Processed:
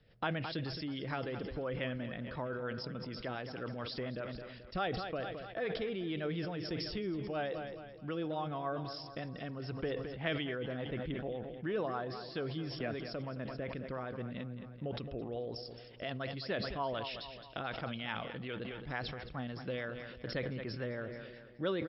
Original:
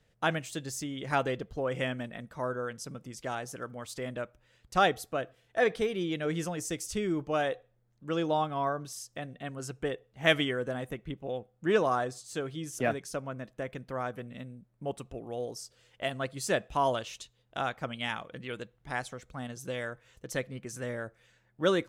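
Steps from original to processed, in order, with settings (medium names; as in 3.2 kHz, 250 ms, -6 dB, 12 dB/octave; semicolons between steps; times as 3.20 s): compression 2.5:1, threshold -42 dBFS, peak gain reduction 15.5 dB; rotary cabinet horn 7 Hz; brick-wall FIR low-pass 5.5 kHz; on a send: feedback delay 217 ms, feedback 55%, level -14 dB; on the sum: decay stretcher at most 34 dB/s; trim +4 dB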